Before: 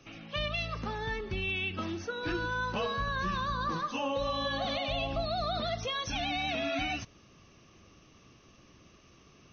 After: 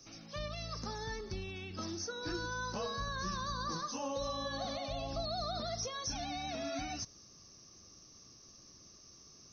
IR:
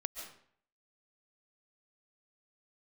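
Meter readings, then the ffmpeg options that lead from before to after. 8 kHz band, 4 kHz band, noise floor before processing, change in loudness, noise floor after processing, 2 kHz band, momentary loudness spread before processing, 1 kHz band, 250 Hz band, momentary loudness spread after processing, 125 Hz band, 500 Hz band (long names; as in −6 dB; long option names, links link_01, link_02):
can't be measured, −5.5 dB, −59 dBFS, −6.0 dB, −59 dBFS, −10.0 dB, 4 LU, −6.5 dB, −5.5 dB, 18 LU, −5.5 dB, −5.5 dB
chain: -filter_complex "[0:a]acrossover=split=2500[link_01][link_02];[link_02]acompressor=threshold=-45dB:ratio=4:attack=1:release=60[link_03];[link_01][link_03]amix=inputs=2:normalize=0,highshelf=frequency=3900:width_type=q:width=3:gain=10.5,volume=-5.5dB"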